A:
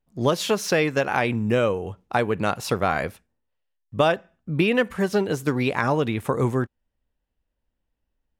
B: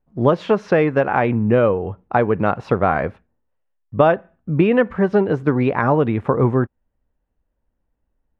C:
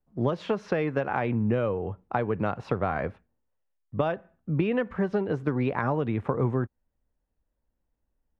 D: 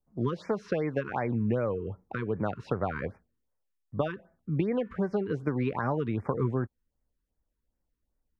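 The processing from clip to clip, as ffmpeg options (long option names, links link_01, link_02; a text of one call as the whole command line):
ffmpeg -i in.wav -af "lowpass=1500,volume=6dB" out.wav
ffmpeg -i in.wav -filter_complex "[0:a]acrossover=split=120|3000[link_01][link_02][link_03];[link_02]acompressor=threshold=-17dB:ratio=6[link_04];[link_01][link_04][link_03]amix=inputs=3:normalize=0,volume=-6dB" out.wav
ffmpeg -i in.wav -af "afftfilt=real='re*(1-between(b*sr/1024,630*pow(3500/630,0.5+0.5*sin(2*PI*2.6*pts/sr))/1.41,630*pow(3500/630,0.5+0.5*sin(2*PI*2.6*pts/sr))*1.41))':imag='im*(1-between(b*sr/1024,630*pow(3500/630,0.5+0.5*sin(2*PI*2.6*pts/sr))/1.41,630*pow(3500/630,0.5+0.5*sin(2*PI*2.6*pts/sr))*1.41))':win_size=1024:overlap=0.75,volume=-2.5dB" out.wav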